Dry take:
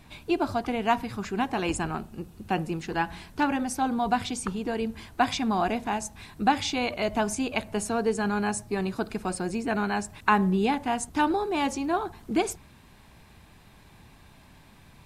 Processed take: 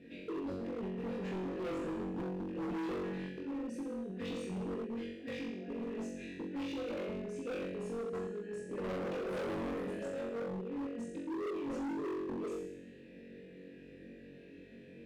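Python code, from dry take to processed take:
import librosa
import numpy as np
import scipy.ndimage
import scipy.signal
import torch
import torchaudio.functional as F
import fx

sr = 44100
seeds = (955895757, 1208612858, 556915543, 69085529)

y = x + 0.39 * np.pad(x, (int(4.2 * sr / 1000.0), 0))[:len(x)]
y = fx.over_compress(y, sr, threshold_db=-34.0, ratio=-1.0)
y = fx.low_shelf_res(y, sr, hz=500.0, db=13.0, q=3.0)
y = fx.hum_notches(y, sr, base_hz=60, count=7)
y = fx.echo_pitch(y, sr, ms=82, semitones=3, count=3, db_per_echo=-3.0, at=(8.61, 10.71))
y = fx.vowel_filter(y, sr, vowel='e')
y = fx.peak_eq(y, sr, hz=170.0, db=7.0, octaves=0.44)
y = fx.room_flutter(y, sr, wall_m=3.7, rt60_s=0.88)
y = np.clip(y, -10.0 ** (-32.0 / 20.0), 10.0 ** (-32.0 / 20.0))
y = F.gain(torch.from_numpy(y), -4.0).numpy()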